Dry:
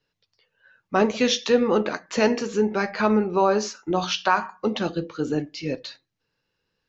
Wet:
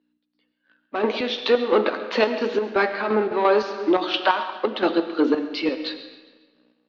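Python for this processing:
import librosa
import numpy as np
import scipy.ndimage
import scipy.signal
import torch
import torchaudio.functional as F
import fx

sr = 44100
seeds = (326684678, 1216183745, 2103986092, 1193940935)

p1 = fx.add_hum(x, sr, base_hz=60, snr_db=28)
p2 = fx.rider(p1, sr, range_db=5, speed_s=0.5)
p3 = p1 + F.gain(torch.from_numpy(p2), 2.0).numpy()
p4 = fx.leveller(p3, sr, passes=2)
p5 = scipy.signal.sosfilt(scipy.signal.ellip(3, 1.0, 40, [270.0, 4000.0], 'bandpass', fs=sr, output='sos'), p4)
p6 = fx.chopper(p5, sr, hz=2.9, depth_pct=60, duty_pct=50)
p7 = p6 + fx.echo_feedback(p6, sr, ms=136, feedback_pct=47, wet_db=-18, dry=0)
p8 = fx.rev_freeverb(p7, sr, rt60_s=1.3, hf_ratio=0.9, predelay_ms=55, drr_db=10.5)
p9 = fx.band_squash(p8, sr, depth_pct=40, at=(3.31, 4.29))
y = F.gain(torch.from_numpy(p9), -7.5).numpy()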